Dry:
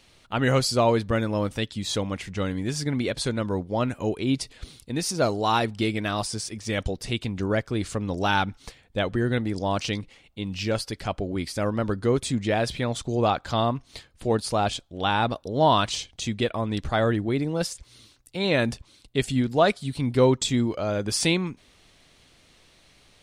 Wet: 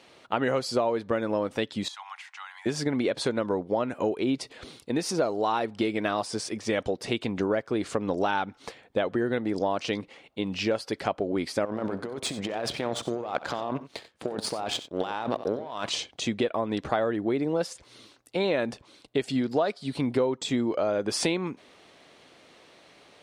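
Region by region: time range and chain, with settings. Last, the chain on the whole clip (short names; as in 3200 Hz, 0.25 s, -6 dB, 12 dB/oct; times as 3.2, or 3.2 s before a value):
1.88–2.66 steep high-pass 800 Hz 72 dB/oct + compressor 3:1, threshold -45 dBFS
11.65–15.89 negative-ratio compressor -30 dBFS + power-law curve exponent 1.4 + tapped delay 65/92 ms -17.5/-16 dB
19.28–19.93 HPF 58 Hz + bell 4800 Hz +9.5 dB 0.42 oct
whole clip: HPF 450 Hz 12 dB/oct; tilt -3.5 dB/oct; compressor 6:1, threshold -30 dBFS; gain +7 dB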